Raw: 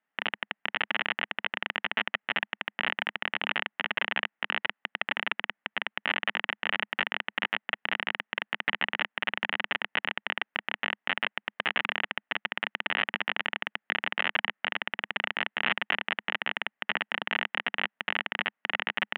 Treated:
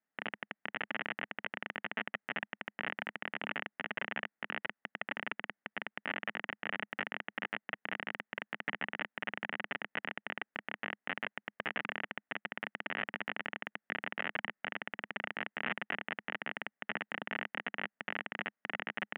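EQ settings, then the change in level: low-pass 1.7 kHz 12 dB/octave; peaking EQ 990 Hz -6.5 dB 1.1 oct; -2.5 dB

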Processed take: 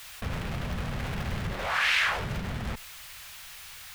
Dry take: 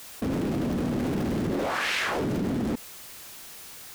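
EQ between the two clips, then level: tone controls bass +4 dB, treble -12 dB; amplifier tone stack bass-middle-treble 10-0-10; +9.0 dB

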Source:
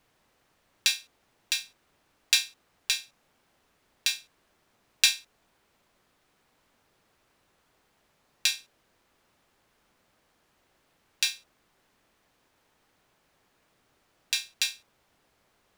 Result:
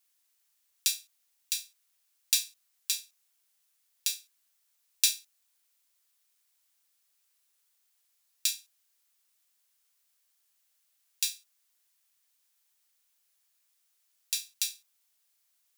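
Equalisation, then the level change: steep high-pass 220 Hz; differentiator; treble shelf 3.9 kHz +6.5 dB; -4.5 dB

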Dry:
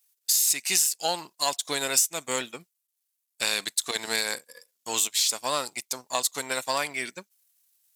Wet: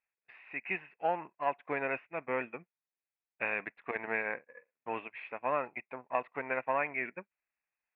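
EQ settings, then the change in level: rippled Chebyshev low-pass 2.6 kHz, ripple 3 dB; -1.5 dB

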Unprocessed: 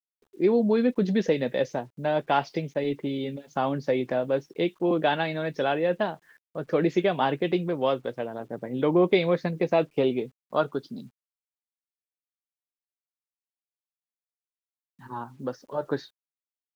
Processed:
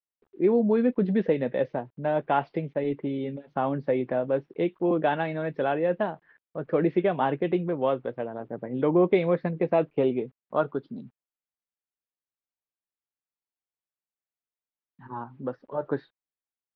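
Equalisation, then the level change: Gaussian low-pass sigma 3.2 samples; 0.0 dB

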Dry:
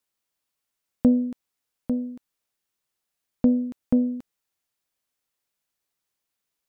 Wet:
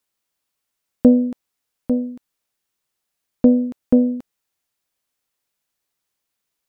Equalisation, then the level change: dynamic bell 590 Hz, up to +8 dB, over -36 dBFS, Q 0.77; +3.5 dB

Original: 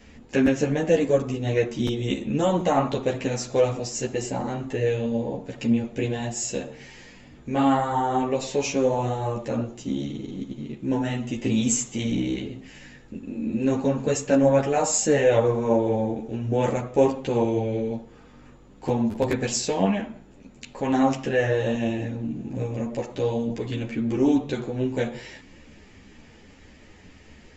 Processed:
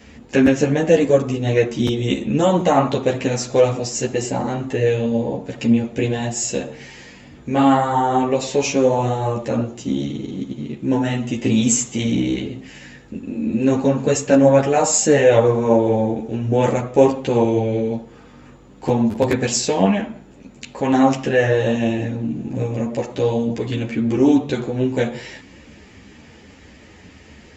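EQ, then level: high-pass 51 Hz; +6.0 dB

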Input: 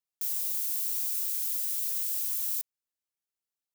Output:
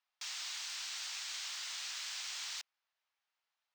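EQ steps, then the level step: boxcar filter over 4 samples; high-pass 710 Hz 24 dB/octave; distance through air 130 m; +13.0 dB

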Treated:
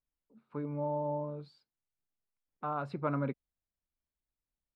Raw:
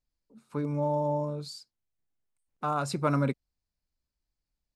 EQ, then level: distance through air 460 m; bass shelf 190 Hz -6 dB; -3.5 dB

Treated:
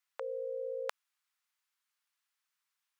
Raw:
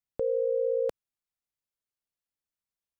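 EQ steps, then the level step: high-pass 1.1 kHz 24 dB/octave; tilt EQ -2.5 dB/octave; +14.0 dB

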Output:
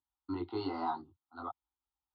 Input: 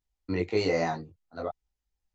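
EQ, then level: cabinet simulation 190–3300 Hz, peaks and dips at 210 Hz -9 dB, 320 Hz -3 dB, 470 Hz -8 dB, 1.1 kHz -5 dB, 1.6 kHz -4 dB, 2.6 kHz -8 dB; static phaser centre 630 Hz, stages 6; static phaser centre 1.8 kHz, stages 6; +6.5 dB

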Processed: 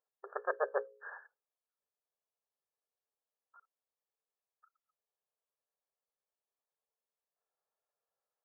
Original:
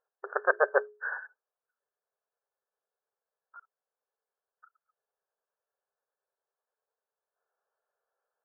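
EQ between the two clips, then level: hum notches 60/120/180/240/300/360/420/480/540 Hz; band-stop 1.5 kHz, Q 5.5; -7.5 dB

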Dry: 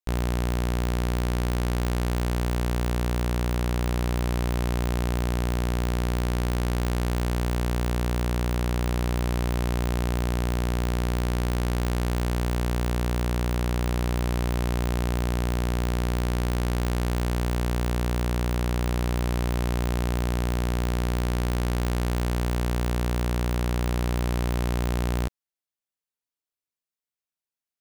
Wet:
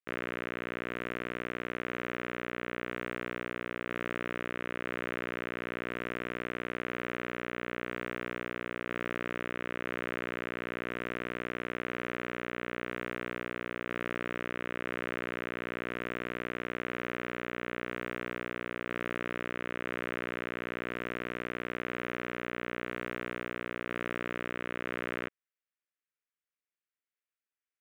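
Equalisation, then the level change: band-pass 480–2600 Hz; static phaser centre 2 kHz, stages 4; +3.0 dB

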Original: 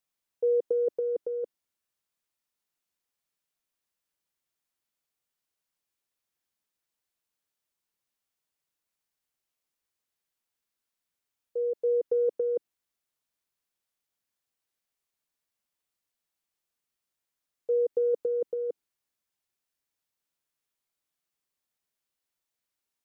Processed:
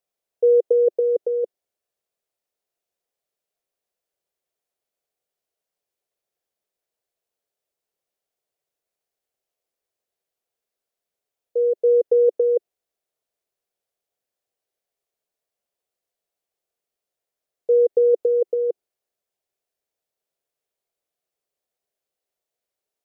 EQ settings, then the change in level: high-order bell 530 Hz +11 dB 1.2 oct; -1.5 dB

